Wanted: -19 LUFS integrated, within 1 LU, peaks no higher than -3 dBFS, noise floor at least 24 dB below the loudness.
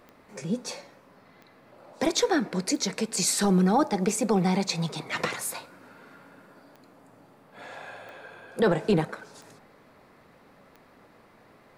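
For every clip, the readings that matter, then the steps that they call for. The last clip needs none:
clicks found 9; loudness -26.0 LUFS; peak level -13.0 dBFS; loudness target -19.0 LUFS
-> de-click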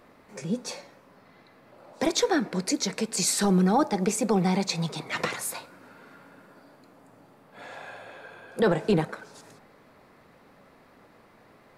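clicks found 0; loudness -26.0 LUFS; peak level -13.0 dBFS; loudness target -19.0 LUFS
-> trim +7 dB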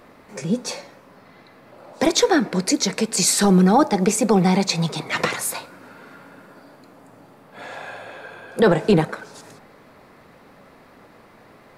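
loudness -19.0 LUFS; peak level -6.0 dBFS; noise floor -50 dBFS

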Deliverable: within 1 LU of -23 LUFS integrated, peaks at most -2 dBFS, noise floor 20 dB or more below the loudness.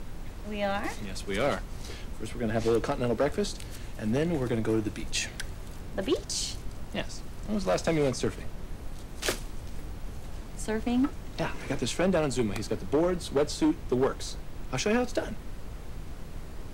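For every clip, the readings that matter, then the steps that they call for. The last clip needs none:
clipped samples 1.2%; clipping level -19.5 dBFS; noise floor -41 dBFS; noise floor target -51 dBFS; loudness -30.5 LUFS; peak level -19.5 dBFS; loudness target -23.0 LUFS
-> clip repair -19.5 dBFS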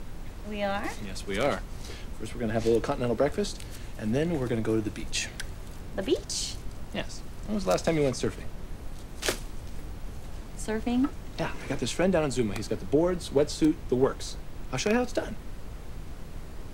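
clipped samples 0.0%; noise floor -41 dBFS; noise floor target -50 dBFS
-> noise print and reduce 9 dB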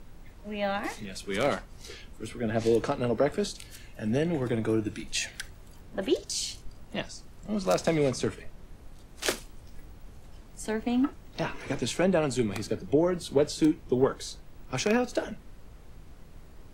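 noise floor -50 dBFS; loudness -29.5 LUFS; peak level -10.5 dBFS; loudness target -23.0 LUFS
-> trim +6.5 dB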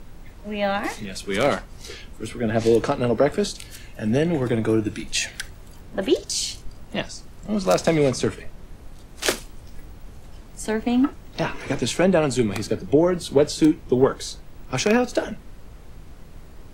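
loudness -23.0 LUFS; peak level -4.0 dBFS; noise floor -43 dBFS

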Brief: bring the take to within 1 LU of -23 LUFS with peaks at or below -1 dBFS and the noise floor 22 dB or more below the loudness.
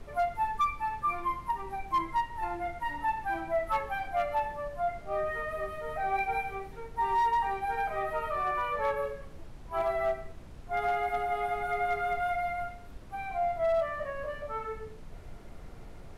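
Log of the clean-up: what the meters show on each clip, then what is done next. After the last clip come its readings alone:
clipped samples 0.5%; clipping level -22.0 dBFS; noise floor -46 dBFS; noise floor target -54 dBFS; loudness -32.0 LUFS; peak level -22.0 dBFS; loudness target -23.0 LUFS
-> clip repair -22 dBFS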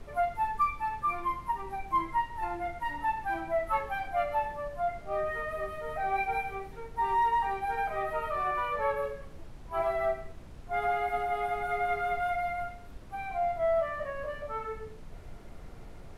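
clipped samples 0.0%; noise floor -46 dBFS; noise floor target -54 dBFS
-> noise print and reduce 8 dB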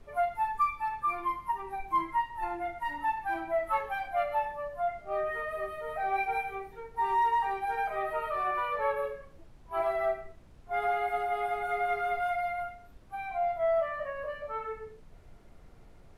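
noise floor -54 dBFS; loudness -32.0 LUFS; peak level -18.5 dBFS; loudness target -23.0 LUFS
-> trim +9 dB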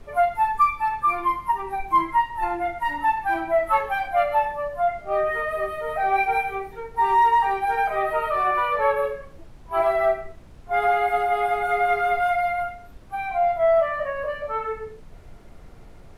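loudness -23.0 LUFS; peak level -9.5 dBFS; noise floor -45 dBFS

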